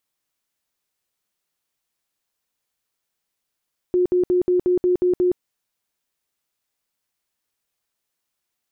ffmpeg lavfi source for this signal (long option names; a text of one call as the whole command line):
ffmpeg -f lavfi -i "aevalsrc='0.188*sin(2*PI*360*mod(t,0.18))*lt(mod(t,0.18),42/360)':duration=1.44:sample_rate=44100" out.wav